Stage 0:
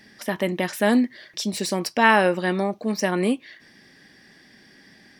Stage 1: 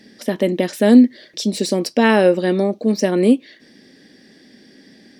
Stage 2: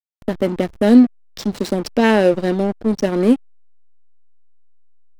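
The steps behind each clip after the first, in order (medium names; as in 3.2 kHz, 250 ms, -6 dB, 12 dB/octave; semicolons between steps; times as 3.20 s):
ten-band graphic EQ 250 Hz +11 dB, 500 Hz +10 dB, 1 kHz -4 dB, 4 kHz +6 dB, 8 kHz +4 dB; trim -2.5 dB
hysteresis with a dead band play -18 dBFS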